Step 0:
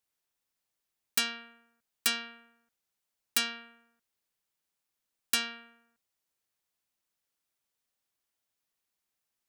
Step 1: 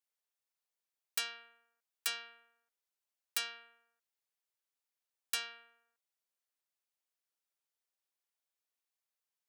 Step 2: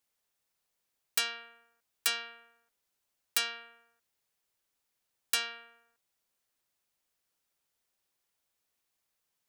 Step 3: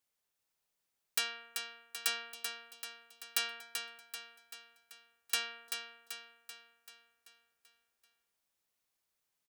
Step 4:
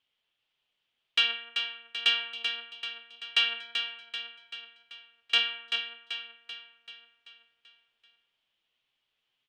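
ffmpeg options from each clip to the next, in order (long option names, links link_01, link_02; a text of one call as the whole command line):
ffmpeg -i in.wav -af "highpass=frequency=400:width=0.5412,highpass=frequency=400:width=1.3066,volume=-7.5dB" out.wav
ffmpeg -i in.wav -filter_complex "[0:a]lowshelf=frequency=330:gain=6,asplit=2[link_01][link_02];[link_02]alimiter=level_in=3dB:limit=-24dB:level=0:latency=1:release=429,volume=-3dB,volume=-1dB[link_03];[link_01][link_03]amix=inputs=2:normalize=0,volume=3dB" out.wav
ffmpeg -i in.wav -af "aecho=1:1:386|772|1158|1544|1930|2316|2702:0.473|0.251|0.133|0.0704|0.0373|0.0198|0.0105,volume=-3.5dB" out.wav
ffmpeg -i in.wav -af "lowpass=frequency=3100:width_type=q:width=5.6,flanger=delay=7.2:depth=2:regen=61:speed=1.8:shape=triangular,volume=7dB" out.wav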